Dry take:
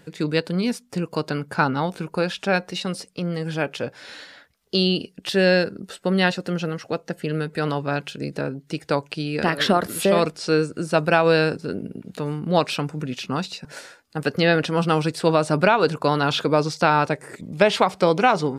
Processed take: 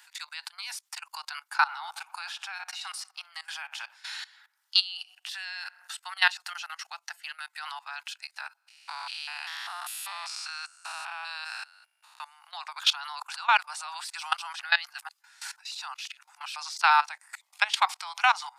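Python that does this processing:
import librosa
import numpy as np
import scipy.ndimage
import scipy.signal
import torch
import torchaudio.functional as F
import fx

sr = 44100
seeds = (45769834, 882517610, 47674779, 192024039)

y = fx.echo_filtered(x, sr, ms=61, feedback_pct=76, hz=1900.0, wet_db=-14, at=(1.65, 5.93), fade=0.02)
y = fx.spec_steps(y, sr, hold_ms=200, at=(8.56, 12.18), fade=0.02)
y = fx.edit(y, sr, fx.reverse_span(start_s=12.68, length_s=3.88), tone=tone)
y = scipy.signal.sosfilt(scipy.signal.butter(12, 800.0, 'highpass', fs=sr, output='sos'), y)
y = fx.high_shelf(y, sr, hz=2500.0, db=7.0)
y = fx.level_steps(y, sr, step_db=19)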